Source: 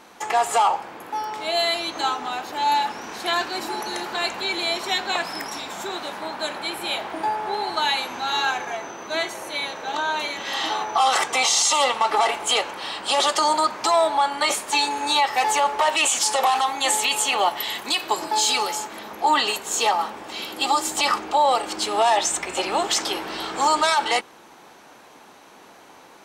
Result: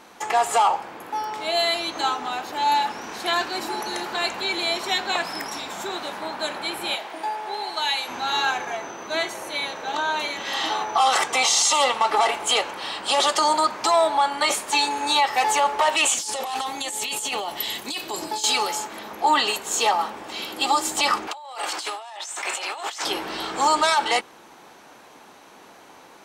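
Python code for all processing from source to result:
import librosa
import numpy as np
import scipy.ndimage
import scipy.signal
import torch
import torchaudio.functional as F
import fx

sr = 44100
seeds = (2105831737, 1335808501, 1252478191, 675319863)

y = fx.chain(x, sr, fx.highpass(hz=680.0, slope=6),
    fx.peak_eq(hz=1300.0, db=-4.5, octaves=0.88), at=(6.95, 8.08))
y = fx.chain(y, sr, fx.peak_eq(hz=1200.0, db=-8.0, octaves=2.4),
    fx.over_compress(threshold_db=-28.0, ratio=-1.0), at=(16.14, 18.44))
y = fx.chain(y, sr, fx.highpass(hz=770.0, slope=12),
    fx.over_compress(threshold_db=-33.0, ratio=-1.0), at=(21.27, 23.05))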